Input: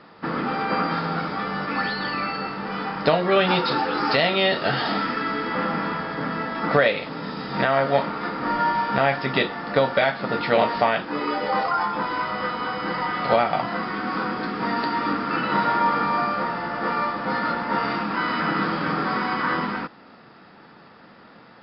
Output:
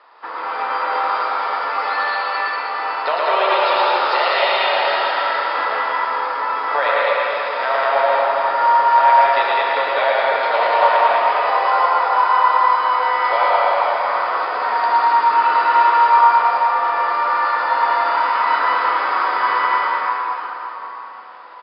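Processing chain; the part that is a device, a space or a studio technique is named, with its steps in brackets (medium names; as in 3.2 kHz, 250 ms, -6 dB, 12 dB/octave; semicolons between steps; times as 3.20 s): station announcement (band-pass 430–4700 Hz; peaking EQ 1 kHz +9 dB 0.27 oct; loudspeakers at several distances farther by 38 m -2 dB, 69 m -2 dB; reverberation RT60 4.0 s, pre-delay 115 ms, DRR -1.5 dB); Chebyshev high-pass 600 Hz, order 2; trim -1.5 dB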